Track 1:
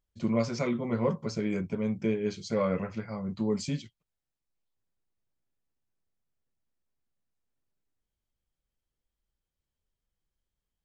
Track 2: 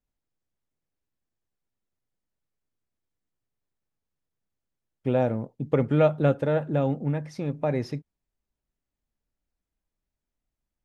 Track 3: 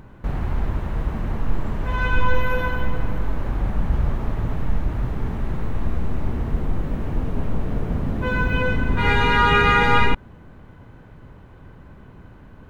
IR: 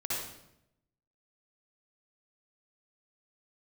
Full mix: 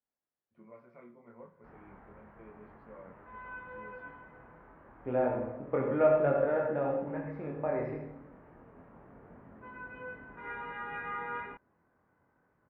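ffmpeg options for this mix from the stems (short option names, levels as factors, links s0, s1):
-filter_complex "[0:a]adelay=350,volume=0.141,asplit=2[s0][s1];[s1]volume=0.1[s2];[1:a]volume=0.708,asplit=2[s3][s4];[s4]volume=0.668[s5];[2:a]adelay=1400,volume=0.168[s6];[3:a]atrim=start_sample=2205[s7];[s2][s5]amix=inputs=2:normalize=0[s8];[s8][s7]afir=irnorm=-1:irlink=0[s9];[s0][s3][s6][s9]amix=inputs=4:normalize=0,lowpass=f=1900:w=0.5412,lowpass=f=1900:w=1.3066,flanger=delay=22.5:depth=3.1:speed=0.32,highpass=f=590:p=1"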